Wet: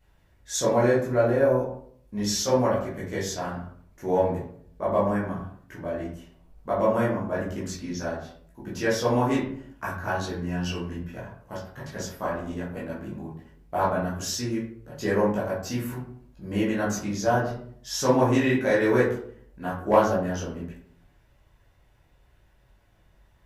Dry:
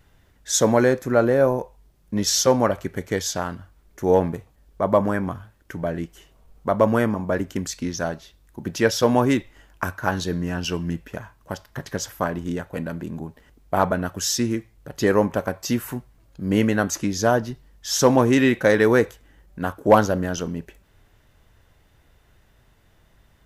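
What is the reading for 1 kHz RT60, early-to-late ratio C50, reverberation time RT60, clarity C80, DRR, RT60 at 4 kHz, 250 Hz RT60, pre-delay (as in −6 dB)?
0.55 s, 4.5 dB, 0.60 s, 9.0 dB, −8.5 dB, 0.35 s, 0.75 s, 12 ms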